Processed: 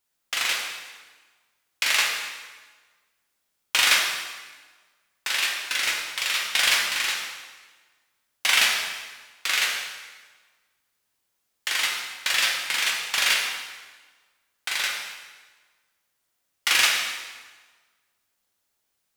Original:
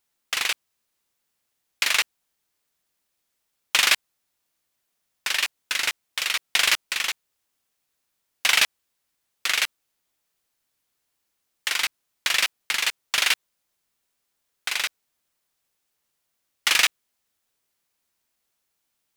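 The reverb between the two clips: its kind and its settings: plate-style reverb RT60 1.4 s, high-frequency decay 0.85×, DRR -2 dB; trim -3 dB

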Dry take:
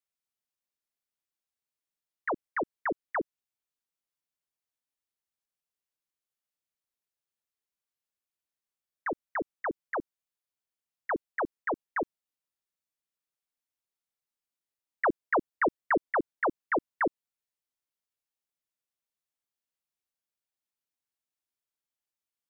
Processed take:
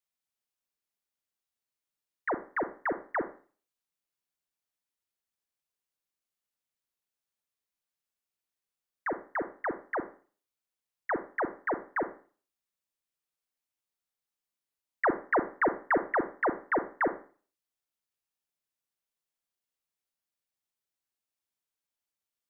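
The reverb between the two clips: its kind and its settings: Schroeder reverb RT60 0.41 s, combs from 32 ms, DRR 10 dB

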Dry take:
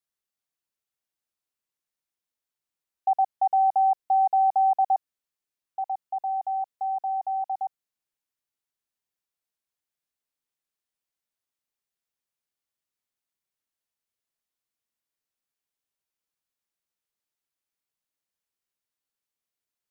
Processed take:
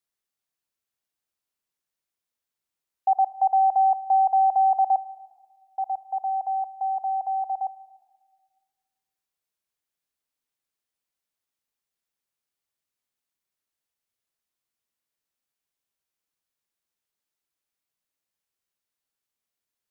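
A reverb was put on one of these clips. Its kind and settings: plate-style reverb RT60 1.6 s, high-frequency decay 0.75×, DRR 16.5 dB; trim +1.5 dB

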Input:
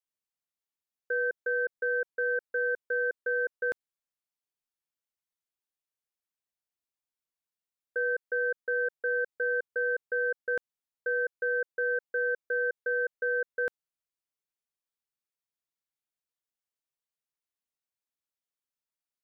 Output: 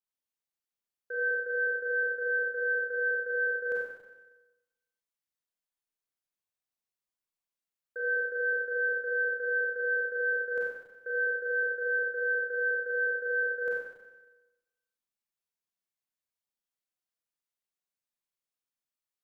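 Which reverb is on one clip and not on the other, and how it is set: Schroeder reverb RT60 1.1 s, combs from 31 ms, DRR -5.5 dB; trim -8 dB

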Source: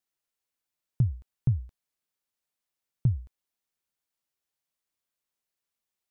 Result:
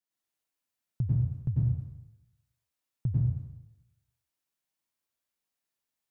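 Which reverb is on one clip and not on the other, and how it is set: plate-style reverb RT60 0.9 s, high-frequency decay 0.85×, pre-delay 85 ms, DRR -5.5 dB; trim -6.5 dB

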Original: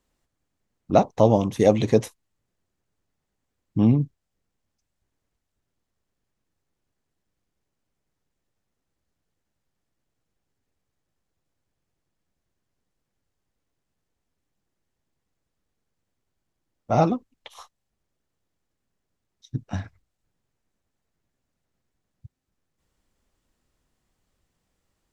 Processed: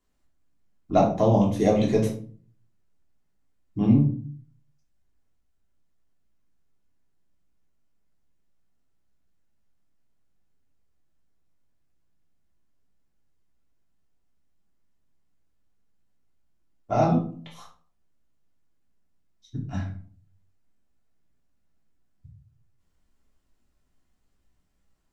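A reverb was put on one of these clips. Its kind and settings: simulated room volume 340 m³, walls furnished, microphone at 3.2 m; trim -7.5 dB

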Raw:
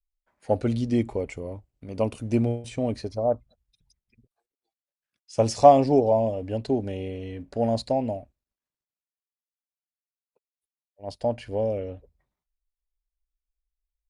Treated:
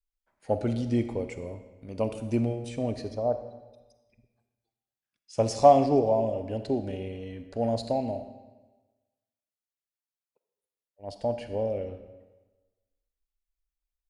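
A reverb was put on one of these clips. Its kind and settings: algorithmic reverb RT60 1.2 s, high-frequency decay 0.9×, pre-delay 5 ms, DRR 9 dB; trim -3.5 dB

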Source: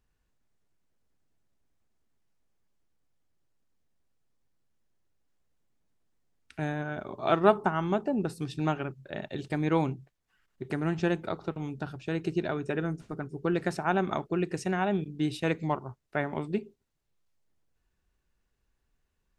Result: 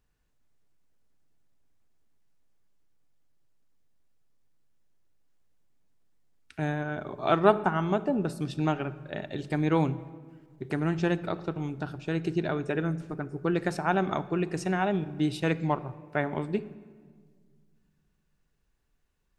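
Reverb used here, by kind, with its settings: simulated room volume 2300 m³, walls mixed, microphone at 0.38 m; trim +1 dB

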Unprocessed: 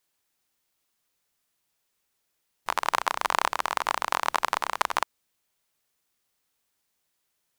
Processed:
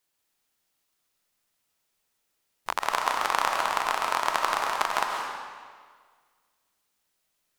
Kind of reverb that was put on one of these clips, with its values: algorithmic reverb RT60 1.7 s, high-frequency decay 0.9×, pre-delay 100 ms, DRR 1 dB; trim -1.5 dB

